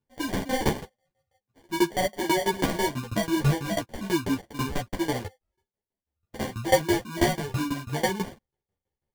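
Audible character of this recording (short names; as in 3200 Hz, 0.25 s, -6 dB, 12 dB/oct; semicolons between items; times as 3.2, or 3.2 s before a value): aliases and images of a low sample rate 1300 Hz, jitter 0%; tremolo saw down 6.1 Hz, depth 95%; a shimmering, thickened sound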